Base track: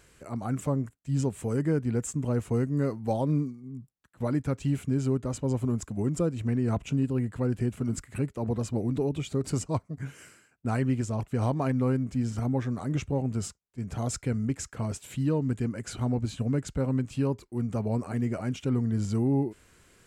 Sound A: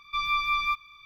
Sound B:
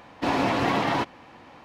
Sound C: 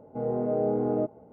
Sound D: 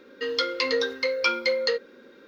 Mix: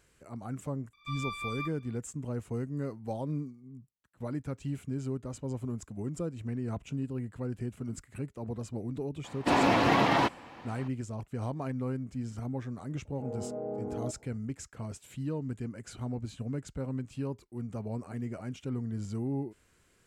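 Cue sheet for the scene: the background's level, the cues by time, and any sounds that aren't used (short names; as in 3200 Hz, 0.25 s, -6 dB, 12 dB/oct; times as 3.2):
base track -8 dB
0.93 add A -12 dB
9.24 add B -0.5 dB
13.05 add C -10.5 dB
not used: D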